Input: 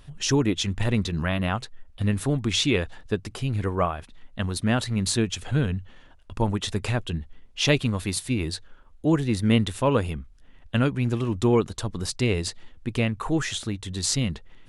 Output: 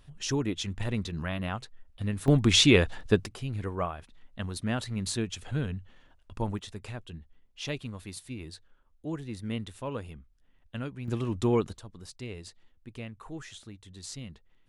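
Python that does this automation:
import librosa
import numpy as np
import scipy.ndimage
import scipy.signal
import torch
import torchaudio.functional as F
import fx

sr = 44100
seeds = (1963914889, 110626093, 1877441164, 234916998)

y = fx.gain(x, sr, db=fx.steps((0.0, -7.5), (2.28, 3.0), (3.26, -7.5), (6.59, -14.0), (11.08, -5.0), (11.78, -16.5)))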